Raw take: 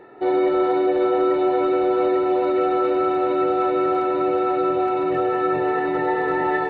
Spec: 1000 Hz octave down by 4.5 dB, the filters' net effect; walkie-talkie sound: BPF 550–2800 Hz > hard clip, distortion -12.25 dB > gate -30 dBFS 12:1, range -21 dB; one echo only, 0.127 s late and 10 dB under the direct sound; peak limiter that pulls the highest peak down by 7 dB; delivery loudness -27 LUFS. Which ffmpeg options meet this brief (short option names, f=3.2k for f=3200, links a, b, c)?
-af "equalizer=f=1k:t=o:g=-6,alimiter=limit=-18dB:level=0:latency=1,highpass=550,lowpass=2.8k,aecho=1:1:127:0.316,asoftclip=type=hard:threshold=-28.5dB,agate=range=-21dB:threshold=-30dB:ratio=12,volume=8.5dB"